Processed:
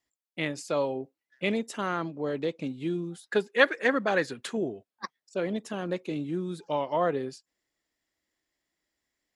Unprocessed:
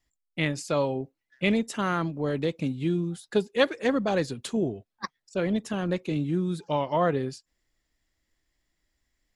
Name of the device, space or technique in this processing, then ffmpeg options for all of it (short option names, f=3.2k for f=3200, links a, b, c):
filter by subtraction: -filter_complex "[0:a]asettb=1/sr,asplit=3[a][b][c];[a]atrim=end=1.864[d];[b]atrim=start=1.86:end=2.75,asetpts=PTS-STARTPTS,afade=t=in:d=0.004:c=qsin,afade=t=out:st=0.886:d=0.004:c=qsin,lowpass=7.6k[e];[c]atrim=start=2.746[f];[d][e]acrossfade=d=0.004:c1=hsin:c2=qsin[g];[g][f]acrossfade=d=0.004:c1=qsin:c2=hsin,asplit=2[h][i];[i]lowpass=410,volume=-1[j];[h][j]amix=inputs=2:normalize=0,asettb=1/sr,asplit=3[k][l][m];[k]atrim=end=3.264[n];[l]atrim=start=3.26:end=4.58,asetpts=PTS-STARTPTS,afade=t=in:d=0.004:c=qsin,afade=t=out:st=1.316:d=0.004:c=qsin,equalizer=f=1.7k:t=o:w=1.1:g=11[o];[m]atrim=start=4.576[p];[n][o]acrossfade=d=0.004:c1=hsin:c2=qsin[q];[q][p]acrossfade=d=0.004:c1=qsin:c2=hsin,volume=-3.5dB"